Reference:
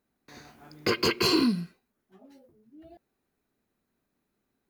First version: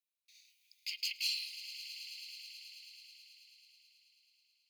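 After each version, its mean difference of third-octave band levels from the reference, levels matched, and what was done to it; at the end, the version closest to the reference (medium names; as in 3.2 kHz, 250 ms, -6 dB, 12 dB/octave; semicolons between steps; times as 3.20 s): 20.0 dB: steep high-pass 2.3 kHz 72 dB/octave; on a send: echo with a slow build-up 108 ms, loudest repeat 5, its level -16 dB; on the sum: trim -7.5 dB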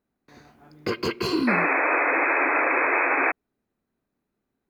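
11.5 dB: treble shelf 2.6 kHz -8.5 dB; painted sound noise, 1.47–3.32 s, 260–2600 Hz -22 dBFS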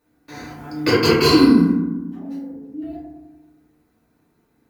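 5.5 dB: in parallel at -0.5 dB: compression, threshold -33 dBFS, peak gain reduction 13 dB; on the sum: FDN reverb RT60 1.1 s, low-frequency decay 1.55×, high-frequency decay 0.3×, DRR -7 dB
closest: third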